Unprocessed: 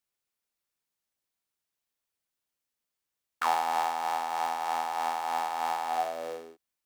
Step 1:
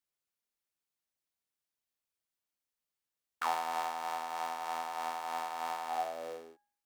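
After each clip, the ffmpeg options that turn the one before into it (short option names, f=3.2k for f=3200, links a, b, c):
-af "bandreject=f=117.8:t=h:w=4,bandreject=f=235.6:t=h:w=4,bandreject=f=353.4:t=h:w=4,bandreject=f=471.2:t=h:w=4,bandreject=f=589:t=h:w=4,bandreject=f=706.8:t=h:w=4,bandreject=f=824.6:t=h:w=4,bandreject=f=942.4:t=h:w=4,bandreject=f=1.0602k:t=h:w=4,bandreject=f=1.178k:t=h:w=4,bandreject=f=1.2958k:t=h:w=4,bandreject=f=1.4136k:t=h:w=4,bandreject=f=1.5314k:t=h:w=4,bandreject=f=1.6492k:t=h:w=4,bandreject=f=1.767k:t=h:w=4,bandreject=f=1.8848k:t=h:w=4,bandreject=f=2.0026k:t=h:w=4,bandreject=f=2.1204k:t=h:w=4,bandreject=f=2.2382k:t=h:w=4,bandreject=f=2.356k:t=h:w=4,volume=-5dB"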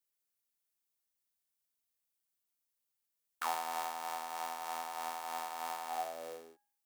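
-af "highshelf=f=6.7k:g=11,volume=-3.5dB"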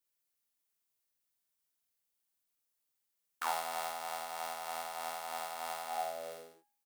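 -af "aecho=1:1:50|68:0.596|0.376"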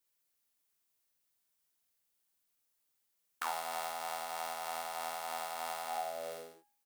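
-af "acompressor=threshold=-41dB:ratio=2,volume=3.5dB"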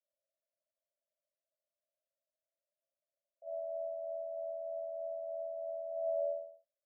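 -af "asuperpass=centerf=600:order=12:qfactor=4.1,volume=9dB"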